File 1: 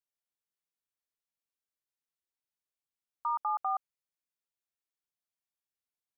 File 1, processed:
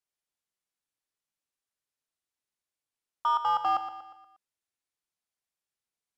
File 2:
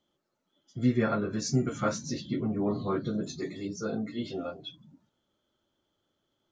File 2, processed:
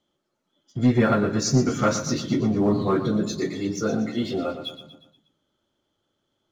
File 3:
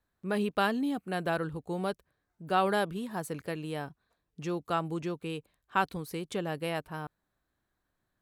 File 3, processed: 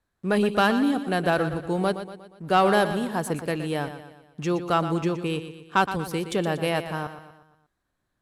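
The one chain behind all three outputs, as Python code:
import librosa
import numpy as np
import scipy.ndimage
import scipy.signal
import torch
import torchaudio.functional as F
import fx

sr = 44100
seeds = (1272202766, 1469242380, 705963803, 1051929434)

y = scipy.signal.sosfilt(scipy.signal.butter(4, 12000.0, 'lowpass', fs=sr, output='sos'), x)
y = fx.leveller(y, sr, passes=1)
y = fx.echo_feedback(y, sr, ms=119, feedback_pct=49, wet_db=-11)
y = F.gain(torch.from_numpy(y), 4.5).numpy()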